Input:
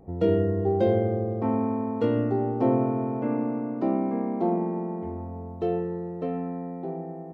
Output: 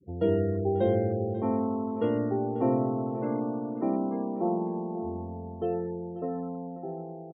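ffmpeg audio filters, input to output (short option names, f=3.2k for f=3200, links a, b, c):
-filter_complex "[0:a]bandreject=f=60:t=h:w=6,bandreject=f=120:t=h:w=6,bandreject=f=180:t=h:w=6,bandreject=f=240:t=h:w=6,afftfilt=real='re*gte(hypot(re,im),0.0126)':imag='im*gte(hypot(re,im),0.0126)':win_size=1024:overlap=0.75,asplit=2[a][b];[b]adelay=540,lowpass=f=2.8k:p=1,volume=-14dB,asplit=2[c][d];[d]adelay=540,lowpass=f=2.8k:p=1,volume=0.21[e];[c][e]amix=inputs=2:normalize=0[f];[a][f]amix=inputs=2:normalize=0,volume=-3dB"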